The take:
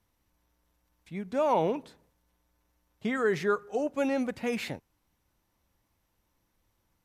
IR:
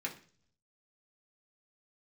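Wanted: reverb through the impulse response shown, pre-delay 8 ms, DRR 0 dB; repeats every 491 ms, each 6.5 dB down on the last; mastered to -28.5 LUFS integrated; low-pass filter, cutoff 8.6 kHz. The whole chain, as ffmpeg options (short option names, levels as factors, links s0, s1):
-filter_complex "[0:a]lowpass=8600,aecho=1:1:491|982|1473|1964|2455|2946:0.473|0.222|0.105|0.0491|0.0231|0.0109,asplit=2[s0][s1];[1:a]atrim=start_sample=2205,adelay=8[s2];[s1][s2]afir=irnorm=-1:irlink=0,volume=0.794[s3];[s0][s3]amix=inputs=2:normalize=0"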